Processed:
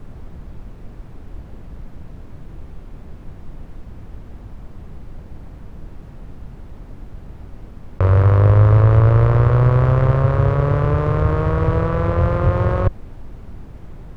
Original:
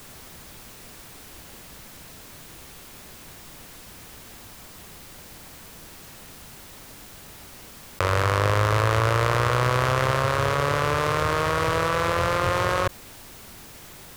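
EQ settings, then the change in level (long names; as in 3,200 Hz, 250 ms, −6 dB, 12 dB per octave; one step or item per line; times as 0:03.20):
spectral tilt −4 dB per octave
high-shelf EQ 2,700 Hz −11 dB
0.0 dB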